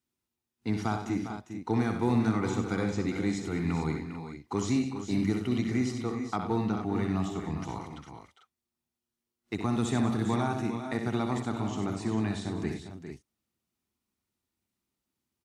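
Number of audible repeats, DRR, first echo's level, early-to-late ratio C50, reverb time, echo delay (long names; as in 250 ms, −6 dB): 5, no reverb audible, −7.5 dB, no reverb audible, no reverb audible, 64 ms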